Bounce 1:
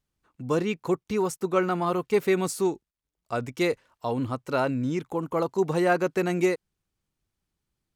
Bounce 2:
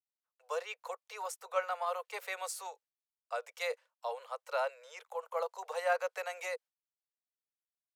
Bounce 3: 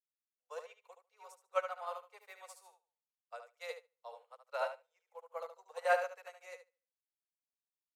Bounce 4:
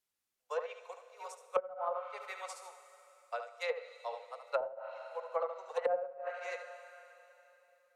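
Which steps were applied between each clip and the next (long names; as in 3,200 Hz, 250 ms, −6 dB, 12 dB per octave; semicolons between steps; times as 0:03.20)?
noise gate with hold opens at −51 dBFS; Butterworth high-pass 480 Hz 96 dB per octave; level −7 dB
on a send: repeating echo 73 ms, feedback 39%, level −3.5 dB; on the sum: expander for the loud parts 2.5 to 1, over −50 dBFS; level +1.5 dB
four-comb reverb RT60 3.2 s, combs from 33 ms, DRR 12.5 dB; treble cut that deepens with the level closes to 310 Hz, closed at −34 dBFS; level +9 dB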